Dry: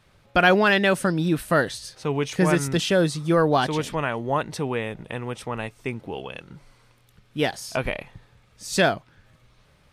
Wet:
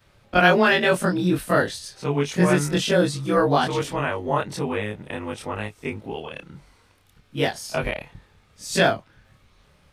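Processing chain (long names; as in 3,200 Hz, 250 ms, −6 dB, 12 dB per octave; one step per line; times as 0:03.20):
every overlapping window played backwards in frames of 56 ms
level +4 dB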